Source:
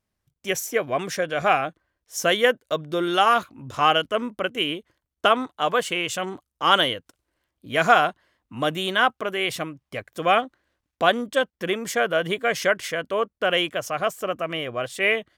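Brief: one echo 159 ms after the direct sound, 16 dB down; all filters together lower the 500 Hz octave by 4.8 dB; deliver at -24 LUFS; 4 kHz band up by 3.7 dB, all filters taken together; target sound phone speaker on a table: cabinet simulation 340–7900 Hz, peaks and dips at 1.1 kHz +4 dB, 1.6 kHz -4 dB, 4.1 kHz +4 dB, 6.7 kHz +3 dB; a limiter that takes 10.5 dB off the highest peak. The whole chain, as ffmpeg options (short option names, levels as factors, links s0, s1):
-af "equalizer=f=500:t=o:g=-6,equalizer=f=4000:t=o:g=4.5,alimiter=limit=0.224:level=0:latency=1,highpass=f=340:w=0.5412,highpass=f=340:w=1.3066,equalizer=f=1100:t=q:w=4:g=4,equalizer=f=1600:t=q:w=4:g=-4,equalizer=f=4100:t=q:w=4:g=4,equalizer=f=6700:t=q:w=4:g=3,lowpass=f=7900:w=0.5412,lowpass=f=7900:w=1.3066,aecho=1:1:159:0.158,volume=1.26"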